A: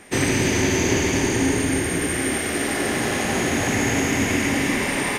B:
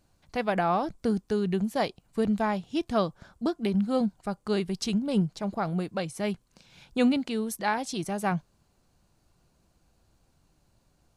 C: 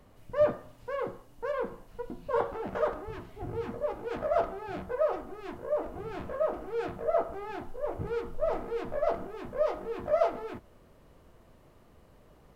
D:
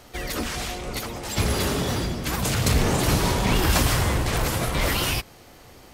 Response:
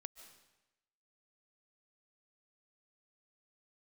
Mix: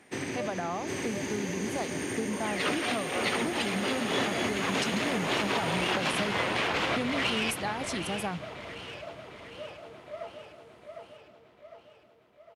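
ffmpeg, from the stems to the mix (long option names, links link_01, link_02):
-filter_complex "[0:a]acrusher=bits=10:mix=0:aa=0.000001,volume=-10.5dB,asplit=2[link_01][link_02];[link_02]volume=-6.5dB[link_03];[1:a]equalizer=frequency=9800:width_type=o:width=0.77:gain=11,volume=0dB,asplit=2[link_04][link_05];[2:a]volume=-14.5dB,asplit=2[link_06][link_07];[link_07]volume=-5.5dB[link_08];[3:a]acontrast=35,lowpass=frequency=2900:width_type=q:width=1.7,asoftclip=type=tanh:threshold=-13.5dB,adelay=2300,volume=0dB,asplit=2[link_09][link_10];[link_10]volume=-18dB[link_11];[link_05]apad=whole_len=363182[link_12];[link_09][link_12]sidechaincompress=threshold=-34dB:ratio=8:attack=6.5:release=127[link_13];[link_01][link_04]amix=inputs=2:normalize=0,highshelf=frequency=8700:gain=-11.5,acompressor=threshold=-30dB:ratio=6,volume=0dB[link_14];[link_06][link_13]amix=inputs=2:normalize=0,highpass=350,acompressor=threshold=-26dB:ratio=6,volume=0dB[link_15];[link_03][link_08][link_11]amix=inputs=3:normalize=0,aecho=0:1:755|1510|2265|3020|3775|4530|5285|6040:1|0.55|0.303|0.166|0.0915|0.0503|0.0277|0.0152[link_16];[link_14][link_15][link_16]amix=inputs=3:normalize=0,highpass=130"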